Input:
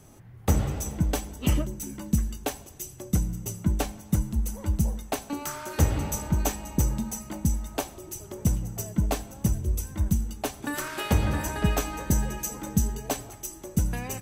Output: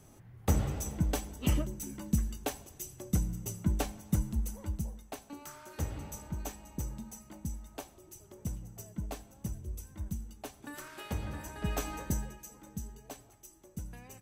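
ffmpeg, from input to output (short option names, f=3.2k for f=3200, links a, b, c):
-af "volume=3dB,afade=t=out:st=4.31:d=0.59:silence=0.375837,afade=t=in:st=11.56:d=0.35:silence=0.398107,afade=t=out:st=11.91:d=0.47:silence=0.266073"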